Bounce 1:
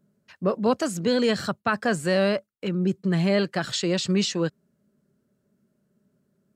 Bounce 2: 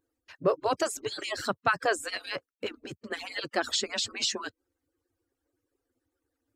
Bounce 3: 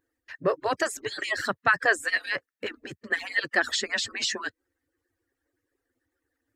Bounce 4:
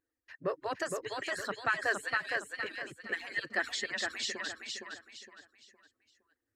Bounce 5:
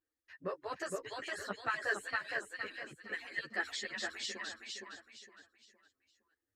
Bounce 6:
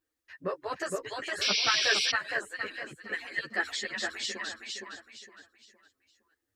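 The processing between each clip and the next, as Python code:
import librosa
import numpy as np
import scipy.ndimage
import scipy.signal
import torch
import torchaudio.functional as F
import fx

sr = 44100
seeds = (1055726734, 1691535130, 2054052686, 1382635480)

y1 = fx.hpss_only(x, sr, part='percussive')
y2 = fx.peak_eq(y1, sr, hz=1800.0, db=14.0, octaves=0.38)
y3 = fx.echo_feedback(y2, sr, ms=463, feedback_pct=33, wet_db=-4)
y3 = F.gain(torch.from_numpy(y3), -9.0).numpy()
y4 = fx.ensemble(y3, sr)
y4 = F.gain(torch.from_numpy(y4), -1.5).numpy()
y5 = fx.spec_paint(y4, sr, seeds[0], shape='noise', start_s=1.41, length_s=0.71, low_hz=2100.0, high_hz=5900.0, level_db=-34.0)
y5 = F.gain(torch.from_numpy(y5), 6.0).numpy()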